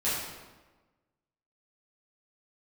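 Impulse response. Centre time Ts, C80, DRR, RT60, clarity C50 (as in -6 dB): 80 ms, 2.5 dB, -11.5 dB, 1.3 s, 0.0 dB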